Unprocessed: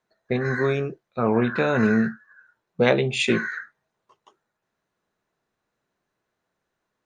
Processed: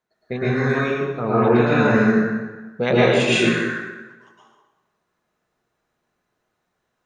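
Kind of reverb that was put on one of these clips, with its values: plate-style reverb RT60 1.2 s, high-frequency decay 0.75×, pre-delay 0.1 s, DRR -8 dB; gain -3.5 dB

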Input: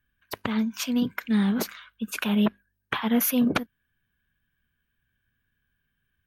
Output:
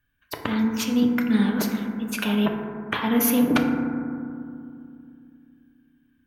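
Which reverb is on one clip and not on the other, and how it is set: FDN reverb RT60 2.4 s, low-frequency decay 1.5×, high-frequency decay 0.25×, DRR 2 dB; gain +1 dB

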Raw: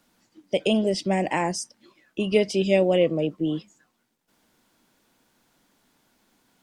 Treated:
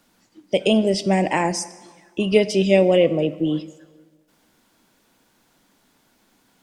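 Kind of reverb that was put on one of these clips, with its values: plate-style reverb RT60 1.5 s, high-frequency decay 0.75×, DRR 14 dB; gain +4 dB

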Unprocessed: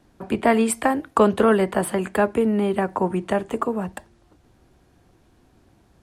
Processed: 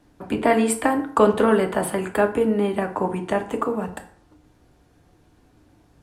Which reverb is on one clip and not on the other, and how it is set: FDN reverb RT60 0.57 s, low-frequency decay 0.95×, high-frequency decay 0.65×, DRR 4.5 dB; gain -1 dB

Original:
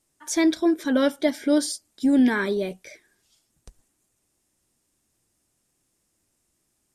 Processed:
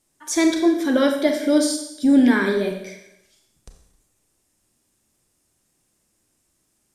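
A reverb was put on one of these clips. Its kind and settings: Schroeder reverb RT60 0.81 s, combs from 29 ms, DRR 4 dB; gain +2.5 dB

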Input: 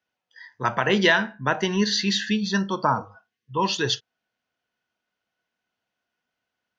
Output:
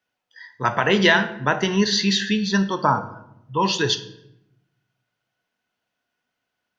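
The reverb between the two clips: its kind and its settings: shoebox room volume 250 m³, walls mixed, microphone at 0.33 m; gain +2.5 dB

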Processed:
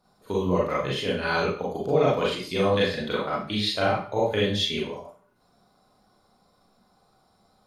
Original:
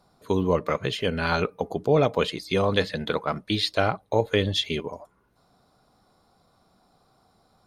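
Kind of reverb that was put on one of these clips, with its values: Schroeder reverb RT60 0.42 s, combs from 30 ms, DRR -6 dB; gain -7 dB

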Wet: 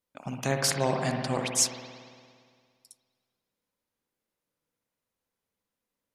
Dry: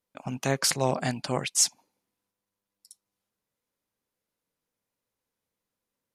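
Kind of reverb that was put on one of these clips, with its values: spring tank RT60 2 s, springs 57 ms, chirp 55 ms, DRR 3 dB; gain -2 dB

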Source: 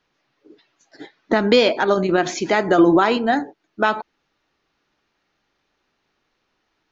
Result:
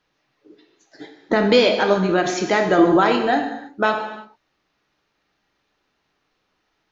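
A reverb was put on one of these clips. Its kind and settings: non-linear reverb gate 0.36 s falling, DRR 4 dB; gain -1 dB

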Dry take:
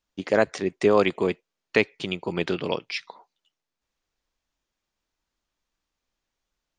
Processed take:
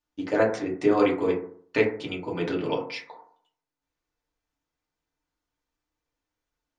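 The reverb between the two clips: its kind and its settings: FDN reverb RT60 0.55 s, low-frequency decay 1×, high-frequency decay 0.3×, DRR -4 dB; gain -7.5 dB

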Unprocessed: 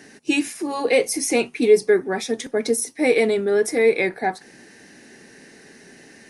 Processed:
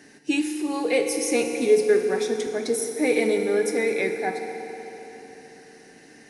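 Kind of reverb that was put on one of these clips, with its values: FDN reverb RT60 3.9 s, high-frequency decay 0.8×, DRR 4 dB; gain -5 dB

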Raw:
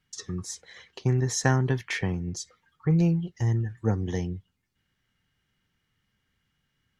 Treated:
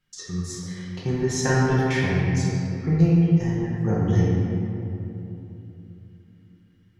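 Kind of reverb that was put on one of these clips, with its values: shoebox room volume 130 m³, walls hard, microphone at 0.91 m; gain -3 dB

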